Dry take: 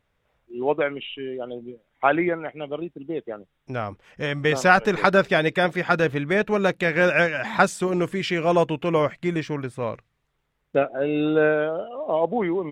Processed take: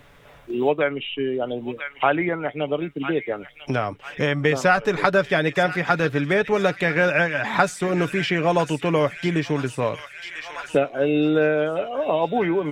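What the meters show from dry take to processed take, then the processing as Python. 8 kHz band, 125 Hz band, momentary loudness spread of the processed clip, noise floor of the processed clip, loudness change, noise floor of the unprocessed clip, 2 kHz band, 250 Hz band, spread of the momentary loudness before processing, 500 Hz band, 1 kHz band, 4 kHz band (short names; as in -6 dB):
+0.5 dB, +2.5 dB, 8 LU, -48 dBFS, +0.5 dB, -73 dBFS, +0.5 dB, +1.5 dB, 14 LU, +1.0 dB, +0.5 dB, +2.0 dB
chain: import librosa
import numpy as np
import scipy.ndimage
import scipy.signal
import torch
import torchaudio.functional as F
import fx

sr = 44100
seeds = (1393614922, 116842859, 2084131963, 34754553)

p1 = x + 0.35 * np.pad(x, (int(7.0 * sr / 1000.0), 0))[:len(x)]
p2 = p1 + fx.echo_wet_highpass(p1, sr, ms=996, feedback_pct=40, hz=1800.0, wet_db=-11.5, dry=0)
y = fx.band_squash(p2, sr, depth_pct=70)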